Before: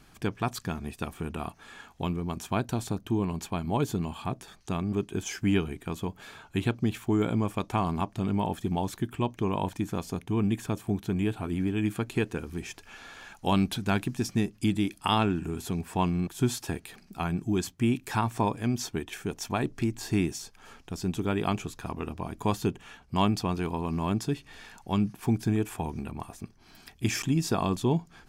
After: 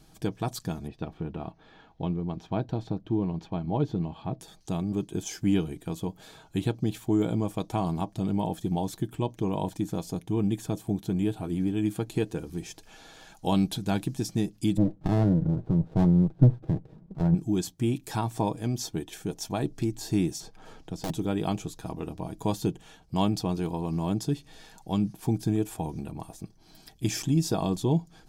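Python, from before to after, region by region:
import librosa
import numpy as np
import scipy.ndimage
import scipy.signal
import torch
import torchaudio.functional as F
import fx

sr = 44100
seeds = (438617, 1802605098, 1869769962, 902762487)

y = fx.chain(x, sr, fx.block_float(bits=7),
    fx.air_absorb(metres=260.0), at=(0.87, 4.4))
y = fx.chain(y, sr, fx.lowpass(hz=1400.0, slope=24),
    fx.peak_eq(hz=130.0, db=11.5, octaves=1.1),
    fx.running_max(window=33), at=(14.77, 17.35))
y = fx.chain(y, sr, fx.high_shelf(hz=5000.0, db=-10.5),
    fx.overflow_wrap(gain_db=23.5),
    fx.band_squash(depth_pct=40), at=(20.4, 21.1))
y = fx.band_shelf(y, sr, hz=1700.0, db=-8.0, octaves=1.7)
y = y + 0.39 * np.pad(y, (int(6.3 * sr / 1000.0), 0))[:len(y)]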